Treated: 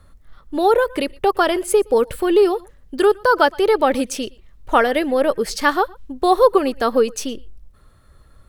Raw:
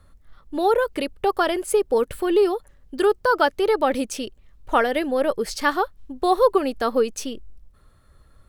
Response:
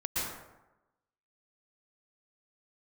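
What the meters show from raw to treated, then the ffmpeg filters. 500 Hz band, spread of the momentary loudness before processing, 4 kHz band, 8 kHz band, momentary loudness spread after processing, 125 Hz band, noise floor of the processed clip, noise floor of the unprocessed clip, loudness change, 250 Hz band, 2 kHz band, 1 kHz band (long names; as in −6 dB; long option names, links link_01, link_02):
+4.0 dB, 12 LU, +4.0 dB, +4.0 dB, 12 LU, can't be measured, −51 dBFS, −55 dBFS, +4.0 dB, +4.0 dB, +4.0 dB, +4.0 dB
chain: -filter_complex "[0:a]asplit=2[link_01][link_02];[1:a]atrim=start_sample=2205,afade=type=out:start_time=0.17:duration=0.01,atrim=end_sample=7938[link_03];[link_02][link_03]afir=irnorm=-1:irlink=0,volume=-22dB[link_04];[link_01][link_04]amix=inputs=2:normalize=0,volume=3.5dB"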